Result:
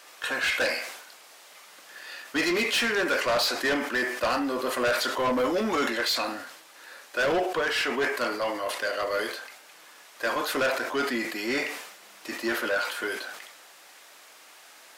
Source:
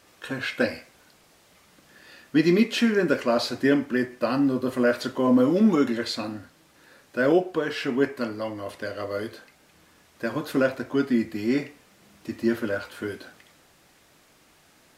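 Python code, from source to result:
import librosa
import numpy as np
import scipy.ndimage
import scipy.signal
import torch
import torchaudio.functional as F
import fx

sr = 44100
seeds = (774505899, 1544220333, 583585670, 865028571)

y = scipy.signal.sosfilt(scipy.signal.butter(2, 660.0, 'highpass', fs=sr, output='sos'), x)
y = 10.0 ** (-29.5 / 20.0) * np.tanh(y / 10.0 ** (-29.5 / 20.0))
y = fx.sustainer(y, sr, db_per_s=62.0)
y = F.gain(torch.from_numpy(y), 8.5).numpy()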